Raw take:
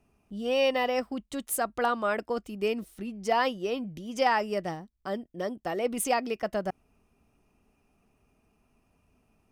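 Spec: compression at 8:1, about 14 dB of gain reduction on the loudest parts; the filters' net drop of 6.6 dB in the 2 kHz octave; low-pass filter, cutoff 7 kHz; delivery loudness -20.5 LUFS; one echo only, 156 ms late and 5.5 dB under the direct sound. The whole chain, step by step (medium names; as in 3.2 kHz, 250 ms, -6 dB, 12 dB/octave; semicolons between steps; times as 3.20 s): low-pass 7 kHz; peaking EQ 2 kHz -8.5 dB; compression 8:1, threshold -36 dBFS; delay 156 ms -5.5 dB; trim +19.5 dB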